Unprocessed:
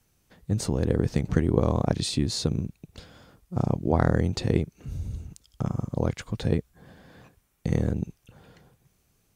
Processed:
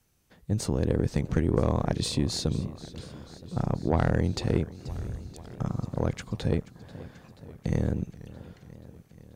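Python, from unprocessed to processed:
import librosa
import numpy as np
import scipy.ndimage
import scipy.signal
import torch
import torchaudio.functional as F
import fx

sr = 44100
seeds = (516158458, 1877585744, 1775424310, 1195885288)

y = fx.tube_stage(x, sr, drive_db=13.0, bias=0.45)
y = fx.echo_warbled(y, sr, ms=485, feedback_pct=71, rate_hz=2.8, cents=134, wet_db=-18.0)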